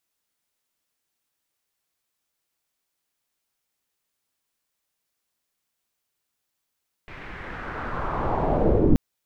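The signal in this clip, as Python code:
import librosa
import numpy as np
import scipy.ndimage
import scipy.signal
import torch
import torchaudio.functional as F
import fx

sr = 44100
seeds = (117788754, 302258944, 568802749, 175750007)

y = fx.riser_noise(sr, seeds[0], length_s=1.88, colour='pink', kind='lowpass', start_hz=2200.0, end_hz=240.0, q=2.5, swell_db=27, law='linear')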